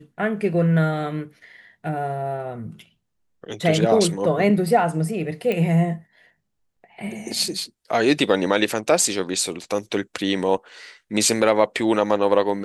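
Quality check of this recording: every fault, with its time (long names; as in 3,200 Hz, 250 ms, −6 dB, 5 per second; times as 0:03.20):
0:05.52: click −13 dBFS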